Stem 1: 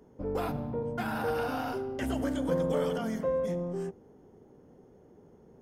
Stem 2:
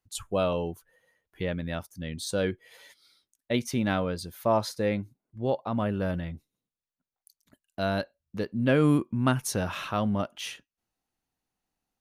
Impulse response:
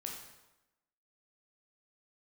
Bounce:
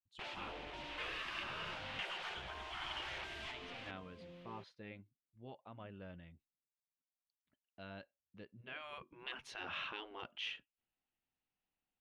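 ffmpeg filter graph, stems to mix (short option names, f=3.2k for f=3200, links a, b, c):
-filter_complex "[0:a]acrusher=bits=6:mix=0:aa=0.000001,volume=-1.5dB,asplit=2[a][b];[b]volume=-20.5dB[c];[1:a]volume=-10dB,afade=t=in:st=8.7:d=0.24:silence=0.237137,asplit=2[d][e];[e]apad=whole_len=247709[f];[a][f]sidechaincompress=threshold=-49dB:ratio=8:attack=5.3:release=1050[g];[c]aecho=0:1:729:1[h];[g][d][h]amix=inputs=3:normalize=0,afftfilt=real='re*lt(hypot(re,im),0.0282)':imag='im*lt(hypot(re,im),0.0282)':win_size=1024:overlap=0.75,lowpass=f=2.9k:t=q:w=2.3"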